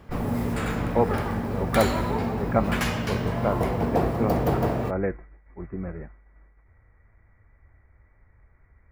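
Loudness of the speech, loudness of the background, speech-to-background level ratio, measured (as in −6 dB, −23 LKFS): −30.0 LKFS, −27.0 LKFS, −3.0 dB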